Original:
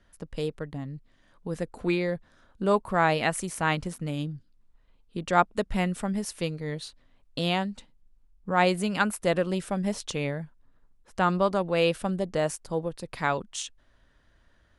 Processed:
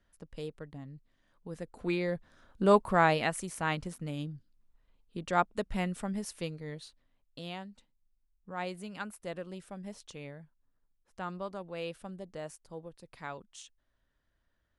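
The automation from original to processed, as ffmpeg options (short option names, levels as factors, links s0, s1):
-af "volume=1.12,afade=t=in:st=1.64:d=1.14:silence=0.298538,afade=t=out:st=2.78:d=0.55:silence=0.446684,afade=t=out:st=6.24:d=1.18:silence=0.354813"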